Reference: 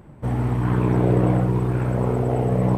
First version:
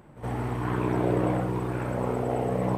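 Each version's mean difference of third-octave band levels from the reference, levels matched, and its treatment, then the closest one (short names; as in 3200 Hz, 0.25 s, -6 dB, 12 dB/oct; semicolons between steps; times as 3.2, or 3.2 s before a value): 4.0 dB: low shelf 280 Hz -9 dB; on a send: reverse echo 68 ms -14 dB; on the sum: gain -1.5 dB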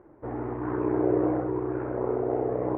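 6.0 dB: LPF 1800 Hz 24 dB/oct; resonant low shelf 250 Hz -9 dB, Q 3; gain -6 dB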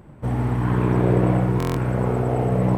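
1.5 dB: narrowing echo 87 ms, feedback 77%, band-pass 1700 Hz, level -5 dB; stuck buffer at 1.58, samples 1024, times 7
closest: third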